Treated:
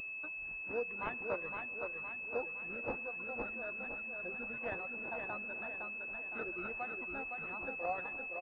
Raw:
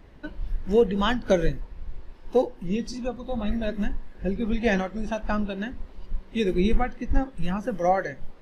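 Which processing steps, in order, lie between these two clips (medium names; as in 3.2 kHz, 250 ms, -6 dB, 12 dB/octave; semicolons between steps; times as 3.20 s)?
peaking EQ 190 Hz -7.5 dB 0.27 oct; reverb removal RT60 0.68 s; differentiator; in parallel at +2.5 dB: compression, threshold -55 dBFS, peak gain reduction 20.5 dB; on the sum: vibrato 1.6 Hz 21 cents; feedback delay 513 ms, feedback 51%, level -5 dB; on a send at -20 dB: reverberation RT60 3.8 s, pre-delay 52 ms; on the sum: class-D stage that switches slowly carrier 2.6 kHz; trim +3 dB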